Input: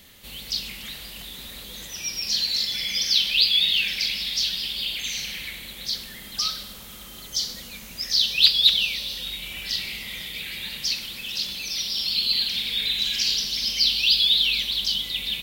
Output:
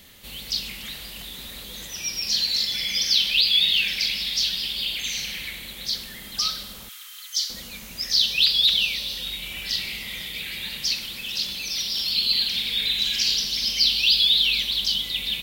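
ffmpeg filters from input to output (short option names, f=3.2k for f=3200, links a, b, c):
-filter_complex "[0:a]asettb=1/sr,asplit=3[a][b][c];[a]atrim=end=6.894[d];[b]atrim=start=6.89:end=7.5,asetpts=PTS-STARTPTS,afade=t=in:d=0.004:c=qsin,afade=t=out:st=0.606:d=0.004:c=qsin,highpass=f=1.3k:w=0.5412,highpass=f=1.3k:w=1.3066[e];[c]atrim=start=7.496[f];[d][e]acrossfade=d=0.004:c1=hsin:c2=qsin[g];[g][f]acrossfade=d=0.004:c1=qsin:c2=hsin,asettb=1/sr,asplit=3[h][i][j];[h]atrim=end=11.564[k];[i]atrim=start=11.56:end=12.12,asetpts=PTS-STARTPTS,afade=t=in:d=0.004:c=qsin,afade=t=out:st=0.556:d=0.004:c=qsin,asoftclip=type=hard:threshold=-21.5dB[l];[j]atrim=start=12.116[m];[k][l]acrossfade=d=0.004:c1=hsin:c2=qsin[n];[n][m]acrossfade=d=0.004:c1=qsin:c2=hsin,alimiter=level_in=8dB:limit=-1dB:release=50:level=0:latency=1,volume=-7dB"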